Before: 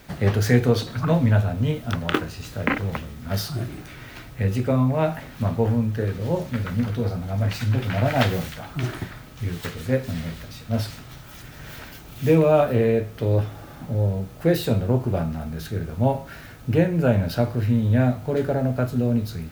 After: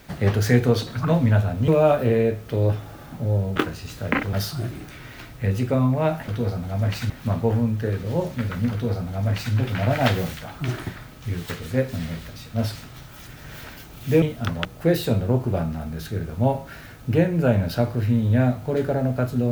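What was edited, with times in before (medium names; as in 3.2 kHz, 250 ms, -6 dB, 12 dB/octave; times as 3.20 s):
1.68–2.11 s: swap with 12.37–14.25 s
2.88–3.30 s: delete
6.87–7.69 s: copy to 5.25 s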